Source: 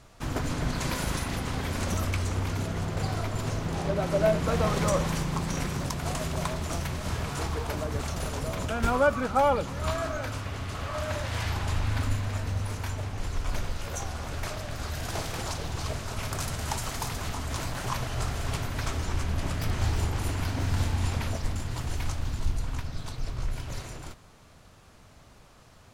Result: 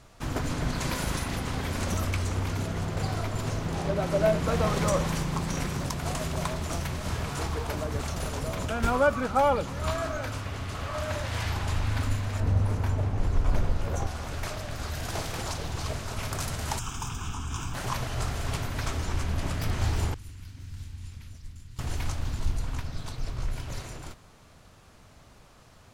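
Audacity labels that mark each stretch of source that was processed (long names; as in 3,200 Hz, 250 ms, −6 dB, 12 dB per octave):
12.400000	14.070000	tilt shelving filter lows +6.5 dB, about 1,400 Hz
16.790000	17.740000	phaser with its sweep stopped centre 2,900 Hz, stages 8
20.140000	21.790000	guitar amp tone stack bass-middle-treble 6-0-2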